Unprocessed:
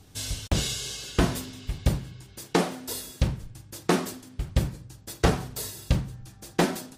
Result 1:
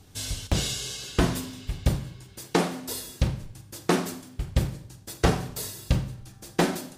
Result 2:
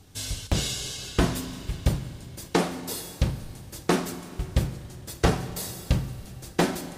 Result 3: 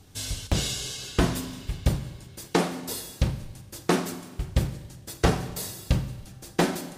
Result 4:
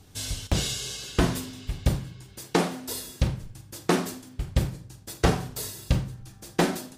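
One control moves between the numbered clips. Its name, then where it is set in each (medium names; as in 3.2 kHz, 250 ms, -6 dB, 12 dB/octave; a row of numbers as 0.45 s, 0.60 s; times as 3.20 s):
Schroeder reverb, RT60: 0.65 s, 3.5 s, 1.5 s, 0.31 s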